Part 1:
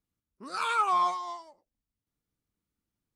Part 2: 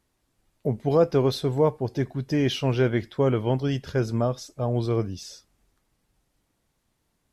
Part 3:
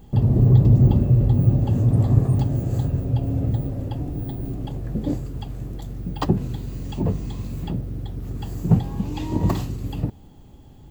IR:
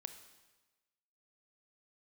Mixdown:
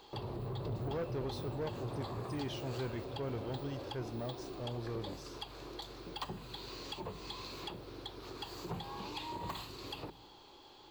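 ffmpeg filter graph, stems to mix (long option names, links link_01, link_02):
-filter_complex "[1:a]volume=-15dB[link_01];[2:a]tiltshelf=frequency=890:gain=-8,volume=0dB,asplit=2[link_02][link_03];[link_03]volume=-14dB[link_04];[link_02]highpass=frequency=340:width=0.5412,highpass=frequency=340:width=1.3066,equalizer=frequency=350:width_type=q:width=4:gain=6,equalizer=frequency=670:width_type=q:width=4:gain=-4,equalizer=frequency=1000:width_type=q:width=4:gain=6,equalizer=frequency=1900:width_type=q:width=4:gain=-9,equalizer=frequency=2900:width_type=q:width=4:gain=-4,equalizer=frequency=4300:width_type=q:width=4:gain=6,lowpass=frequency=5300:width=0.5412,lowpass=frequency=5300:width=1.3066,acompressor=threshold=-40dB:ratio=6,volume=0dB[link_05];[3:a]atrim=start_sample=2205[link_06];[link_04][link_06]afir=irnorm=-1:irlink=0[link_07];[link_01][link_05][link_07]amix=inputs=3:normalize=0,asoftclip=type=tanh:threshold=-32dB"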